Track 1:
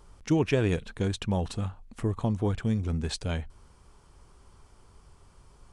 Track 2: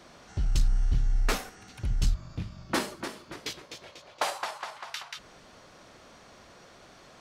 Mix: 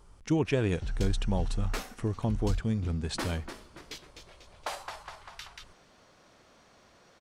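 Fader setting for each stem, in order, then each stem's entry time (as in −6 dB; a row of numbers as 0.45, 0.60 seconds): −2.5, −7.0 decibels; 0.00, 0.45 seconds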